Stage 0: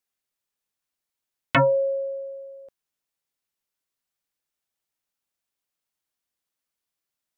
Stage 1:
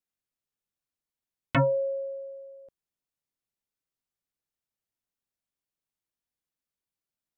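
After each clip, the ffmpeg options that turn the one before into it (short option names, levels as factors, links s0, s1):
-af "lowshelf=f=400:g=9.5,volume=0.376"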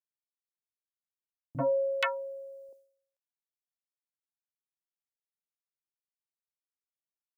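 -filter_complex "[0:a]bass=f=250:g=-12,treble=f=4000:g=12,acrossover=split=210|890[s0][s1][s2];[s1]adelay=40[s3];[s2]adelay=480[s4];[s0][s3][s4]amix=inputs=3:normalize=0,agate=range=0.0224:threshold=0.002:ratio=3:detection=peak"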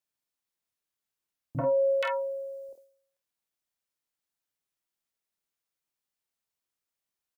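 -af "alimiter=level_in=1.41:limit=0.0631:level=0:latency=1:release=120,volume=0.708,aecho=1:1:26|49:0.398|0.501,volume=1.88"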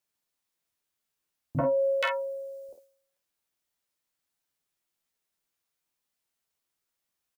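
-filter_complex "[0:a]asplit=2[s0][s1];[s1]adelay=12,volume=0.447[s2];[s0][s2]amix=inputs=2:normalize=0,volume=1.5"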